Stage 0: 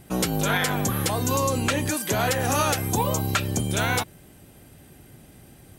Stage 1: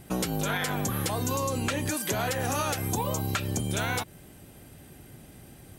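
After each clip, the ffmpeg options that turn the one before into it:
ffmpeg -i in.wav -af "acompressor=threshold=-26dB:ratio=4" out.wav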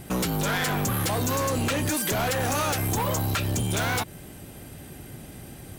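ffmpeg -i in.wav -af "asoftclip=type=hard:threshold=-30dB,volume=7dB" out.wav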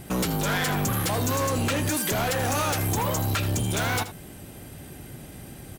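ffmpeg -i in.wav -af "aecho=1:1:80:0.211" out.wav

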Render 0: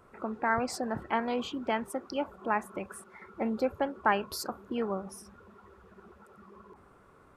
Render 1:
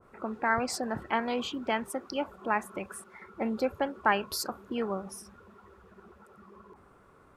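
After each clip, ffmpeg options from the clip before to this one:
ffmpeg -i in.wav -af "adynamicequalizer=threshold=0.00631:dfrequency=1600:dqfactor=0.7:tfrequency=1600:tqfactor=0.7:attack=5:release=100:ratio=0.375:range=2:mode=boostabove:tftype=highshelf" out.wav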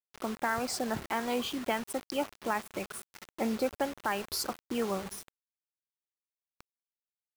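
ffmpeg -i in.wav -af "alimiter=limit=-19dB:level=0:latency=1:release=209,acrusher=bits=6:mix=0:aa=0.000001" out.wav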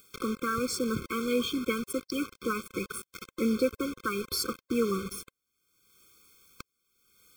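ffmpeg -i in.wav -af "acompressor=mode=upward:threshold=-35dB:ratio=2.5,afftfilt=real='re*eq(mod(floor(b*sr/1024/520),2),0)':imag='im*eq(mod(floor(b*sr/1024/520),2),0)':win_size=1024:overlap=0.75,volume=5dB" out.wav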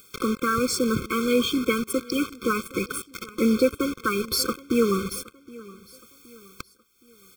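ffmpeg -i in.wav -af "acontrast=72,aecho=1:1:769|1538|2307:0.0891|0.0374|0.0157" out.wav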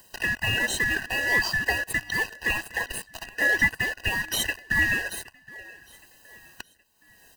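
ffmpeg -i in.wav -filter_complex "[0:a]afftfilt=real='real(if(lt(b,272),68*(eq(floor(b/68),0)*1+eq(floor(b/68),1)*0+eq(floor(b/68),2)*3+eq(floor(b/68),3)*2)+mod(b,68),b),0)':imag='imag(if(lt(b,272),68*(eq(floor(b/68),0)*1+eq(floor(b/68),1)*0+eq(floor(b/68),2)*3+eq(floor(b/68),3)*2)+mod(b,68),b),0)':win_size=2048:overlap=0.75,asplit=2[link_01][link_02];[link_02]acrusher=samples=31:mix=1:aa=0.000001:lfo=1:lforange=18.6:lforate=1.8,volume=-9.5dB[link_03];[link_01][link_03]amix=inputs=2:normalize=0,volume=-2.5dB" out.wav

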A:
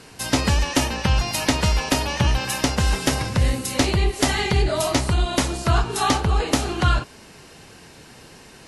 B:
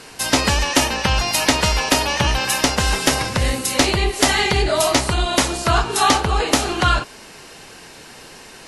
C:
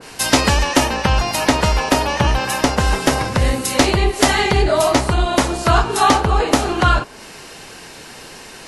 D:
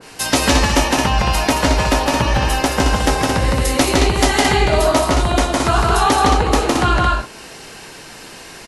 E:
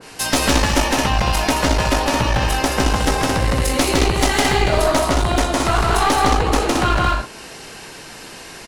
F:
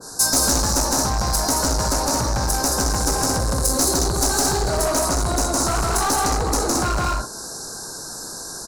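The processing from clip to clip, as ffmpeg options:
ffmpeg -i in.wav -af "equalizer=frequency=96:width=0.39:gain=-9,acontrast=24,volume=1.5dB" out.wav
ffmpeg -i in.wav -af "adynamicequalizer=threshold=0.0224:dfrequency=1800:dqfactor=0.7:tfrequency=1800:tqfactor=0.7:attack=5:release=100:ratio=0.375:range=4:mode=cutabove:tftype=highshelf,volume=3.5dB" out.wav
ffmpeg -i in.wav -filter_complex "[0:a]asplit=2[link_01][link_02];[link_02]adelay=18,volume=-11dB[link_03];[link_01][link_03]amix=inputs=2:normalize=0,asplit=2[link_04][link_05];[link_05]aecho=0:1:160.3|221.6:0.794|0.562[link_06];[link_04][link_06]amix=inputs=2:normalize=0,volume=-2.5dB" out.wav
ffmpeg -i in.wav -af "aeval=exprs='clip(val(0),-1,0.133)':channel_layout=same" out.wav
ffmpeg -i in.wav -af "asuperstop=centerf=2500:order=20:qfactor=1.2,asoftclip=type=tanh:threshold=-17dB,highshelf=frequency=4700:width_type=q:width=1.5:gain=8" out.wav

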